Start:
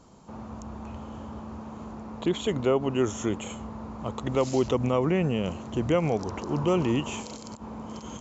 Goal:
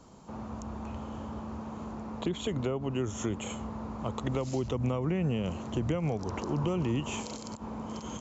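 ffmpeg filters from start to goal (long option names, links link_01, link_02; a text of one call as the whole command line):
ffmpeg -i in.wav -filter_complex "[0:a]acrossover=split=170[link_01][link_02];[link_02]acompressor=threshold=-30dB:ratio=10[link_03];[link_01][link_03]amix=inputs=2:normalize=0" out.wav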